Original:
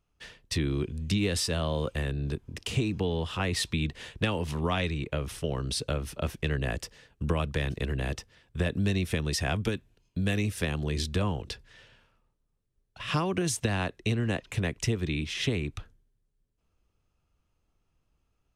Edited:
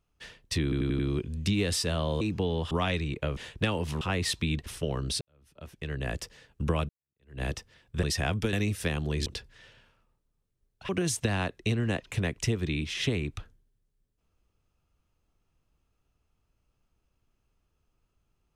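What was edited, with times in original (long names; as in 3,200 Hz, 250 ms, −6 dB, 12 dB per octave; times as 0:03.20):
0:00.63: stutter 0.09 s, 5 plays
0:01.85–0:02.82: remove
0:03.32–0:03.97: swap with 0:04.61–0:05.27
0:05.82–0:06.79: fade in quadratic
0:07.50–0:08.03: fade in exponential
0:08.64–0:09.26: remove
0:09.76–0:10.30: remove
0:11.03–0:11.41: remove
0:13.04–0:13.29: remove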